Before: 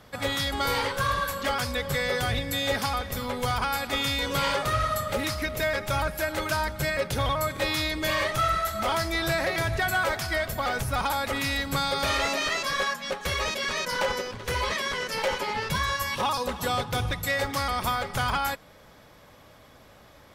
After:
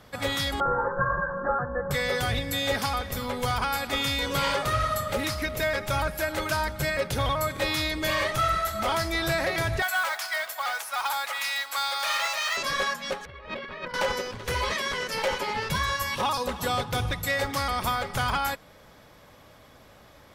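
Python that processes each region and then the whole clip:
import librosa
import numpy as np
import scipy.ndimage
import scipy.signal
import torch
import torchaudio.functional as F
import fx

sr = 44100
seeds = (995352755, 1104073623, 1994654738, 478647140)

y = fx.chain(x, sr, fx.cheby1_lowpass(hz=1700.0, order=8),
    fx.comb(ms=5.7, depth=0.76), at=(0.6, 1.91))
y = fx.chain(y, sr, fx.highpass(hz=760.0, slope=24),
    fx.mod_noise(seeds[0], snr_db=19), at=(9.82, 12.57))
y = fx.chain(y, sr, fx.air_absorb(metres=440.0),
    fx.over_compress(threshold_db=-37.0, ratio=-0.5), at=(13.25, 13.94))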